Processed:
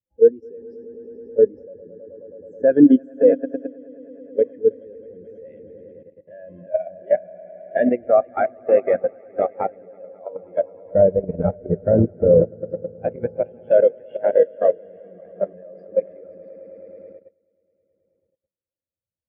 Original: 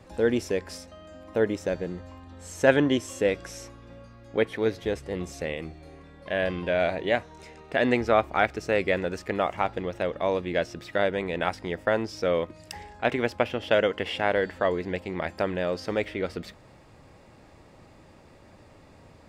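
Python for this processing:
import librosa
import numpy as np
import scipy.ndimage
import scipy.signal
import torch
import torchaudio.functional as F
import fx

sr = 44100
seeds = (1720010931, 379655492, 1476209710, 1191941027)

y = fx.riaa(x, sr, side='playback', at=(10.85, 12.47))
y = fx.echo_swell(y, sr, ms=107, loudest=5, wet_db=-9.0)
y = fx.level_steps(y, sr, step_db=11)
y = fx.spectral_expand(y, sr, expansion=2.5)
y = F.gain(torch.from_numpy(y), 7.0).numpy()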